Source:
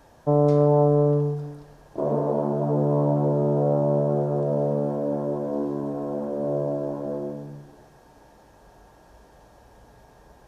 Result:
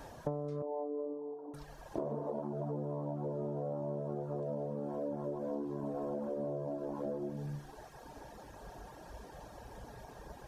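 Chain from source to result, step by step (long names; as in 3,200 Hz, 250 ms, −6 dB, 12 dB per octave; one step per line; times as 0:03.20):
reverb reduction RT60 1 s
0:00.62–0:01.54: elliptic band-pass filter 270–1,000 Hz, stop band 40 dB
downward compressor 16 to 1, threshold −39 dBFS, peak gain reduction 23.5 dB
level +4.5 dB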